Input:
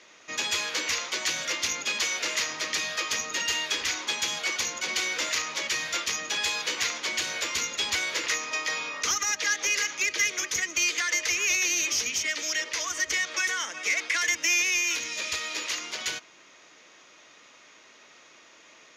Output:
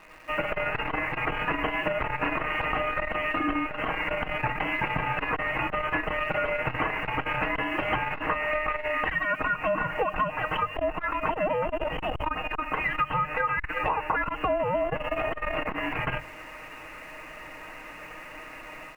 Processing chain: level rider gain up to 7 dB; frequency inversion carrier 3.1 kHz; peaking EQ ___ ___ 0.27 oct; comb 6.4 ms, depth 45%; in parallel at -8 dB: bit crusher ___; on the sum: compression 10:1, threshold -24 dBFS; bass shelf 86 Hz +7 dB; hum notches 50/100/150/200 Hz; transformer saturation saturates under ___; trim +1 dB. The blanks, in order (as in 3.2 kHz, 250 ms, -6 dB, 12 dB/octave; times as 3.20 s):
2 kHz, +4 dB, 8-bit, 240 Hz